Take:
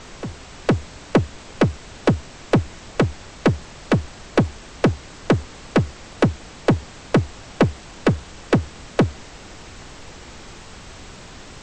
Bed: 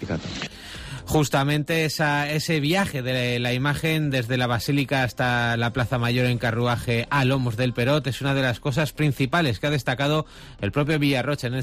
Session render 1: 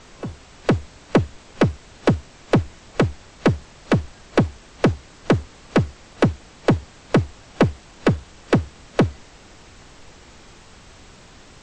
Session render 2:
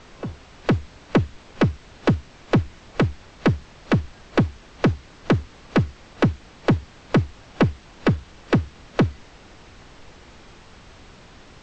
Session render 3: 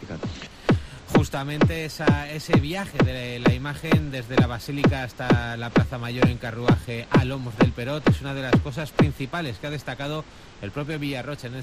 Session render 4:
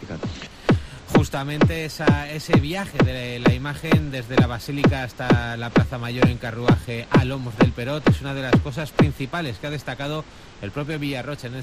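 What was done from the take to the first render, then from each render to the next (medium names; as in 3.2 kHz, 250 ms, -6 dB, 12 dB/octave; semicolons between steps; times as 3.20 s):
noise print and reduce 6 dB
Bessel low-pass 5 kHz, order 8; dynamic bell 610 Hz, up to -5 dB, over -32 dBFS, Q 0.99
add bed -7.5 dB
trim +2 dB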